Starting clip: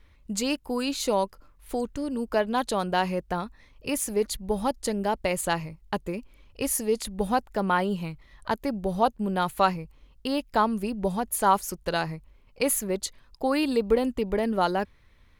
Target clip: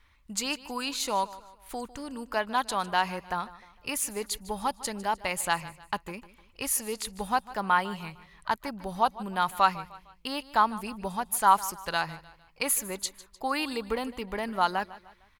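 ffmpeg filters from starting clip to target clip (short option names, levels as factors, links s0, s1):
-filter_complex "[0:a]lowshelf=f=700:t=q:w=1.5:g=-8,asplit=2[s0][s1];[s1]aecho=0:1:152|304|456:0.126|0.0516|0.0212[s2];[s0][s2]amix=inputs=2:normalize=0"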